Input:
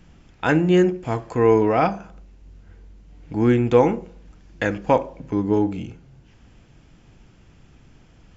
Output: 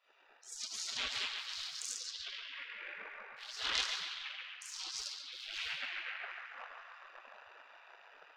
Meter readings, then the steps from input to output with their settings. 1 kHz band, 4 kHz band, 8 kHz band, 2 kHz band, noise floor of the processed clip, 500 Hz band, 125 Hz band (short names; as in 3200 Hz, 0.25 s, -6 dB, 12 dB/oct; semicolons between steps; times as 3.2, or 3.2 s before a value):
-23.5 dB, +4.5 dB, n/a, -9.5 dB, -62 dBFS, -39.0 dB, under -40 dB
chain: Wiener smoothing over 41 samples; reverse; compressor 4:1, threshold -32 dBFS, peak gain reduction 18 dB; reverse; HPF 41 Hz 12 dB/oct; shoebox room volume 140 m³, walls hard, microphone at 1.3 m; chorus voices 4, 0.28 Hz, delay 26 ms, depth 3.7 ms; ten-band EQ 125 Hz +6 dB, 250 Hz -3 dB, 500 Hz -9 dB, 1000 Hz +11 dB, 2000 Hz +8 dB, 4000 Hz +11 dB; AGC gain up to 3 dB; dynamic EQ 1400 Hz, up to -8 dB, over -40 dBFS, Q 2.1; added harmonics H 4 -36 dB, 6 -6 dB, 7 -35 dB, 8 -22 dB, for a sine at -9.5 dBFS; spectral gate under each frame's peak -30 dB weak; on a send: narrowing echo 0.139 s, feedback 65%, band-pass 1400 Hz, level -4 dB; on the sum: gain +2 dB